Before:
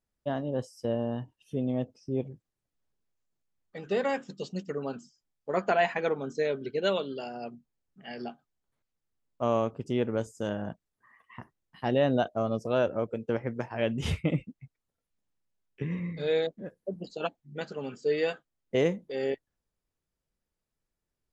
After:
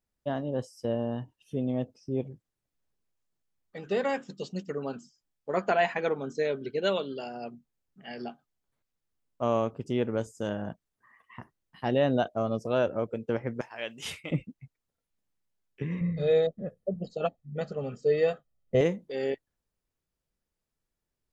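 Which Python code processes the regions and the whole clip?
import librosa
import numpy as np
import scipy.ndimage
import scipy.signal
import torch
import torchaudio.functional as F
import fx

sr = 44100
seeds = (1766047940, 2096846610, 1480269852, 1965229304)

y = fx.chain(x, sr, fx.highpass(hz=1500.0, slope=6),
    fx.high_shelf(hz=5500.0, db=6.0), at=(13.61, 14.31))
y = fx.chain(y, sr, fx.tilt_shelf(db=6.0, hz=730.0),
    fx.comb(ms=1.6, depth=0.6), at=(16.01, 18.81))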